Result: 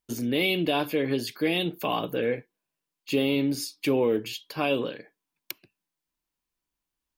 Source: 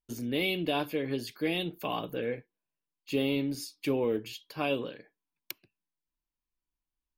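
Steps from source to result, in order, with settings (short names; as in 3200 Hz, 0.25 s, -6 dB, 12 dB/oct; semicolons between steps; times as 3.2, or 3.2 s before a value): low shelf 61 Hz -11.5 dB; in parallel at +2 dB: limiter -24 dBFS, peak gain reduction 7.5 dB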